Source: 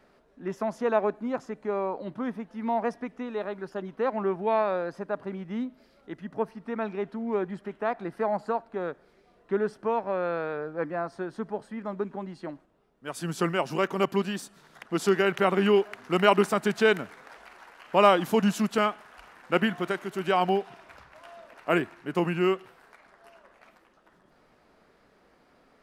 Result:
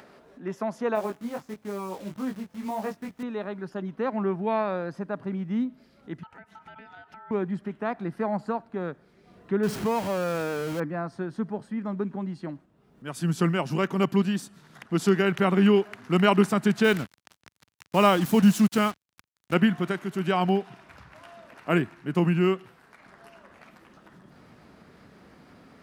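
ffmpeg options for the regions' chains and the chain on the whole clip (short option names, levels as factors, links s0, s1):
-filter_complex "[0:a]asettb=1/sr,asplit=3[s0][s1][s2];[s0]atrim=end=0.954[s3];[s1]atrim=start=0.95:end=3.23,asetpts=PTS-STARTPTS,afade=t=in:d=0.004:c=qsin,afade=t=out:st=2.276:d=0.004:c=qsin,acrusher=bits=8:dc=4:mix=0:aa=0.000001,flanger=delay=19:depth=2.7:speed=1.6[s4];[s2]atrim=start=3.226[s5];[s3][s4]acrossfade=d=0.004:c1=hsin:c2=qsin[s6];[s6][s5]acrossfade=d=0.004:c1=qsin:c2=hsin,asettb=1/sr,asplit=3[s7][s8][s9];[s7]atrim=end=6.234[s10];[s8]atrim=start=6.23:end=7.31,asetpts=PTS-STARTPTS,afade=t=in:d=0.004:c=qsin,afade=t=out:st=1.076:d=0.004:c=qsin,acompressor=threshold=0.01:ratio=16:attack=3.2:release=140:knee=1:detection=peak,aeval=exprs='val(0)*sin(2*PI*1100*n/s)':c=same[s11];[s9]atrim=start=7.306[s12];[s10][s11]acrossfade=d=0.004:c1=hsin:c2=qsin[s13];[s13][s12]acrossfade=d=0.004:c1=qsin:c2=hsin,asettb=1/sr,asplit=3[s14][s15][s16];[s14]atrim=end=9.634[s17];[s15]atrim=start=9.63:end=10.8,asetpts=PTS-STARTPTS,afade=t=in:d=0.004:c=qsin,afade=t=out:st=1.166:d=0.004:c=qsin,aeval=exprs='val(0)+0.5*0.0299*sgn(val(0))':c=same,equalizer=f=3200:t=o:w=0.34:g=3,bandreject=f=3500:w=15[s18];[s16]atrim=start=10.796[s19];[s17][s18]acrossfade=d=0.004:c1=hsin:c2=qsin[s20];[s20][s19]acrossfade=d=0.004:c1=qsin:c2=hsin,asettb=1/sr,asplit=3[s21][s22][s23];[s21]atrim=end=16.844[s24];[s22]atrim=start=16.84:end=19.54,asetpts=PTS-STARTPTS,afade=t=in:d=0.004:c=qsin,afade=t=out:st=2.696:d=0.004:c=qsin,highshelf=f=6400:g=6.5,acrusher=bits=5:mix=0:aa=0.5[s25];[s23]atrim=start=19.536[s26];[s24][s25]acrossfade=d=0.004:c1=hsin:c2=qsin[s27];[s27][s26]acrossfade=d=0.004:c1=qsin:c2=hsin,highpass=97,asubboost=boost=3.5:cutoff=240,acompressor=mode=upward:threshold=0.00708:ratio=2.5"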